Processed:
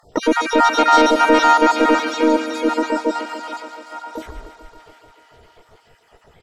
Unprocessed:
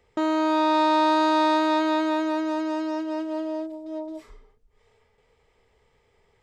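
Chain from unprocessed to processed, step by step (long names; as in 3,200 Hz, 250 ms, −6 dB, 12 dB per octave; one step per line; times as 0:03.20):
time-frequency cells dropped at random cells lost 65%
high-shelf EQ 7,300 Hz −4 dB
in parallel at −1.5 dB: downward compressor 8 to 1, threshold −39 dBFS, peak gain reduction 20 dB
on the sum: sine wavefolder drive 4 dB, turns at −12 dBFS
on a send: feedback echo with a high-pass in the loop 143 ms, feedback 82%, high-pass 170 Hz, level −11.5 dB
on the sum: pitch-shifted copies added −5 semitones −12 dB, −3 semitones −12 dB, +7 semitones −2 dB
level +1.5 dB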